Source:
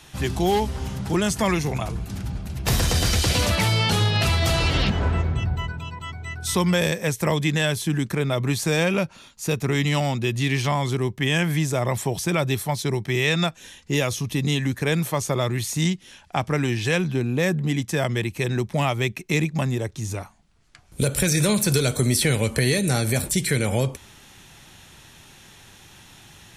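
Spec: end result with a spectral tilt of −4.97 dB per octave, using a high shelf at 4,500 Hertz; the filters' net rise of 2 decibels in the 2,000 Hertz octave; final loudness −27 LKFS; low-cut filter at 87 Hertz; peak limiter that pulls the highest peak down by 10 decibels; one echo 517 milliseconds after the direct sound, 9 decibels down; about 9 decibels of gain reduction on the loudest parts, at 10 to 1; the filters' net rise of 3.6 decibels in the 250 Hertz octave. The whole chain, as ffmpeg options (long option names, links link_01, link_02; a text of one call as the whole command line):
ffmpeg -i in.wav -af "highpass=87,equalizer=frequency=250:width_type=o:gain=5.5,equalizer=frequency=2000:width_type=o:gain=3,highshelf=frequency=4500:gain=-3,acompressor=threshold=-24dB:ratio=10,alimiter=limit=-22dB:level=0:latency=1,aecho=1:1:517:0.355,volume=4dB" out.wav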